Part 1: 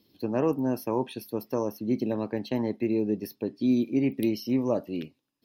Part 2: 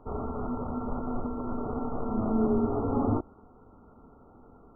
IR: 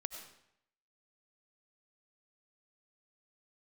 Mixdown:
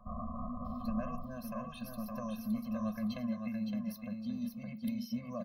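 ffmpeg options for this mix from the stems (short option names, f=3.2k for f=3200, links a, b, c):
-filter_complex "[0:a]acompressor=threshold=-30dB:ratio=6,adelay=650,volume=-2.5dB,asplit=2[a][b];[b]volume=-5dB[c];[1:a]alimiter=level_in=4dB:limit=-24dB:level=0:latency=1:release=57,volume=-4dB,volume=-2.5dB,afade=t=out:st=1.11:d=0.26:silence=0.281838[d];[c]aecho=0:1:564|1128|1692|2256:1|0.24|0.0576|0.0138[e];[a][d][e]amix=inputs=3:normalize=0,equalizer=f=125:t=o:w=1:g=-6,equalizer=f=250:t=o:w=1:g=10,equalizer=f=500:t=o:w=1:g=-9,equalizer=f=1k:t=o:w=1:g=8,afftfilt=real='re*eq(mod(floor(b*sr/1024/250),2),0)':imag='im*eq(mod(floor(b*sr/1024/250),2),0)':win_size=1024:overlap=0.75"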